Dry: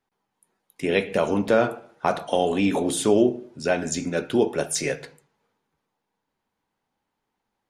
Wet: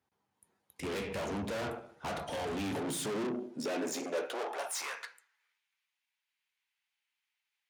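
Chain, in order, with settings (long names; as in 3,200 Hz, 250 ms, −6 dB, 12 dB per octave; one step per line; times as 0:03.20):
tube saturation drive 34 dB, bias 0.55
high-pass filter sweep 75 Hz → 2,400 Hz, 0:02.52–0:05.63
level −1 dB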